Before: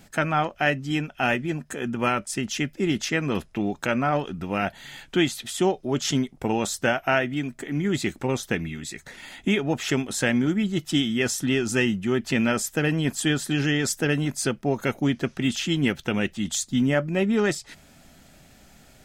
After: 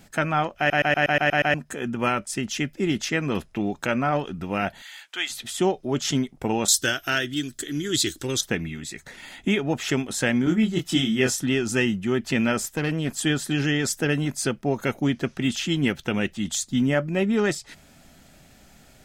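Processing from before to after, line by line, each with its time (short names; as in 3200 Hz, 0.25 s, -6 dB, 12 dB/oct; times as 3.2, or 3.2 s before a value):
0.58 stutter in place 0.12 s, 8 plays
4.82–5.3 HPF 1100 Hz
6.68–8.41 EQ curve 110 Hz 0 dB, 210 Hz -10 dB, 310 Hz +2 dB, 820 Hz -13 dB, 1600 Hz +2 dB, 2300 Hz -6 dB, 3400 Hz +12 dB
10.44–11.36 doubler 23 ms -3 dB
12.61–13.17 tube stage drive 17 dB, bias 0.45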